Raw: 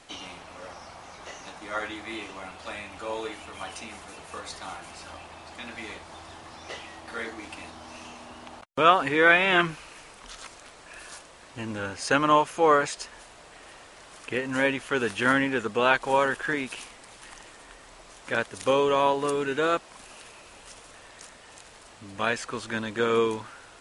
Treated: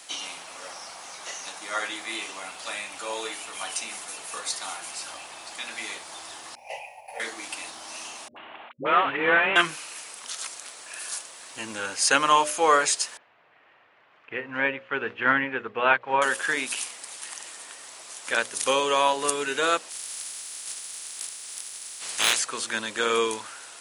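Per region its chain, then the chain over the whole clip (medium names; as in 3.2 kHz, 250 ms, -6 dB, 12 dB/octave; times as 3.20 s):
6.55–7.20 s: expander -39 dBFS + FFT filter 150 Hz 0 dB, 310 Hz -28 dB, 540 Hz +6 dB, 870 Hz +9 dB, 1.3 kHz -30 dB, 2.5 kHz +7 dB, 3.5 kHz -23 dB, 5 kHz -13 dB, 8.5 kHz -17 dB, 13 kHz +5 dB
8.28–9.56 s: CVSD coder 16 kbps + high-pass 68 Hz + phase dispersion highs, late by 84 ms, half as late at 420 Hz
13.17–16.22 s: low-pass 2.5 kHz 24 dB/octave + peaking EQ 110 Hz +9 dB 0.97 oct + upward expansion, over -41 dBFS
19.89–22.38 s: spectral peaks clipped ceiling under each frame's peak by 25 dB + hard clipper -17 dBFS
whole clip: high-pass 92 Hz; RIAA curve recording; hum notches 60/120/180/240/300/360/420/480/540/600 Hz; trim +1.5 dB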